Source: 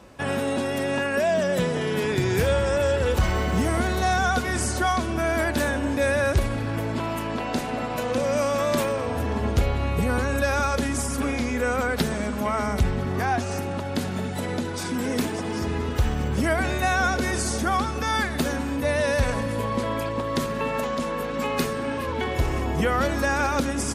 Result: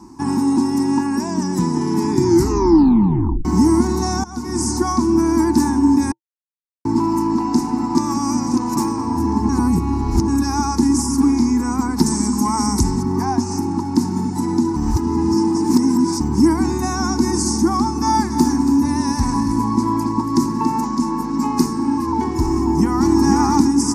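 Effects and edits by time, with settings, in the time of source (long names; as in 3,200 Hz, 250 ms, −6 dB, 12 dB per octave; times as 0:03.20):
0:02.24: tape stop 1.21 s
0:04.24–0:04.88: fade in equal-power, from −21 dB
0:06.12–0:06.85: silence
0:07.95–0:08.77: reverse
0:09.49–0:10.28: reverse
0:12.06–0:13.03: parametric band 8,500 Hz +12.5 dB 1.7 octaves
0:14.76–0:16.20: reverse
0:17.74–0:20.81: single-tap delay 281 ms −10 dB
0:22.52–0:23.18: delay throw 490 ms, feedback 30%, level −2.5 dB
whole clip: drawn EQ curve 130 Hz 0 dB, 330 Hz +14 dB, 570 Hz −29 dB, 910 Hz +12 dB, 1,400 Hz −11 dB, 2,100 Hz −11 dB, 3,300 Hz −20 dB, 5,300 Hz +8 dB, 8,000 Hz +3 dB, 13,000 Hz −3 dB; level +2.5 dB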